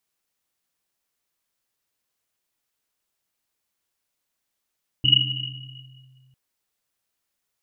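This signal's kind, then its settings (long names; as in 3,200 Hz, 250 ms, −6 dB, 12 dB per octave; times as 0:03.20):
drum after Risset length 1.30 s, pitch 130 Hz, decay 2.53 s, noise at 2,900 Hz, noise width 110 Hz, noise 70%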